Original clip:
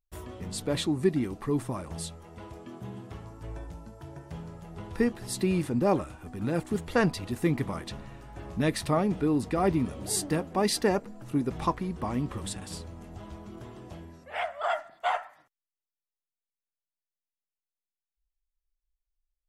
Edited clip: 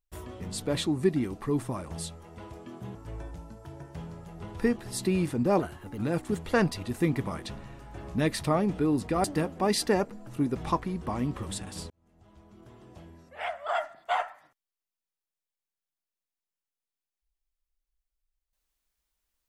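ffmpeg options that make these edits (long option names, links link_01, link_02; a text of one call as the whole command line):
ffmpeg -i in.wav -filter_complex "[0:a]asplit=6[link_01][link_02][link_03][link_04][link_05][link_06];[link_01]atrim=end=2.952[link_07];[link_02]atrim=start=3.308:end=5.954[link_08];[link_03]atrim=start=5.95:end=6.4,asetpts=PTS-STARTPTS,asetrate=50715,aresample=44100[link_09];[link_04]atrim=start=6.396:end=9.662[link_10];[link_05]atrim=start=10.188:end=12.85,asetpts=PTS-STARTPTS,afade=type=out:start_time=2.658:duration=0.004:curve=hsin[link_11];[link_06]atrim=start=12.85,asetpts=PTS-STARTPTS,afade=type=in:duration=1.97[link_12];[link_07][link_08]acrossfade=duration=0.004:curve1=hsin:curve2=hsin[link_13];[link_13][link_09]acrossfade=duration=0.004:curve1=hsin:curve2=hsin[link_14];[link_14][link_10]acrossfade=duration=0.004:curve1=hsin:curve2=hsin[link_15];[link_11][link_12]concat=n=2:v=0:a=1[link_16];[link_15][link_16]acrossfade=duration=0.004:curve1=hsin:curve2=hsin" out.wav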